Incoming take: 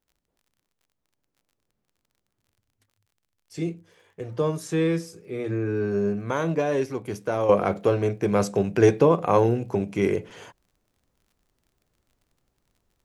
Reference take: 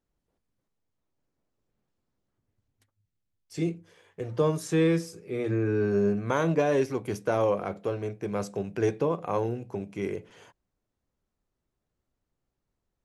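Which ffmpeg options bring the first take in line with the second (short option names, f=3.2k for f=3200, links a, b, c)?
-af "adeclick=t=4,asetnsamples=n=441:p=0,asendcmd='7.49 volume volume -9dB',volume=0dB"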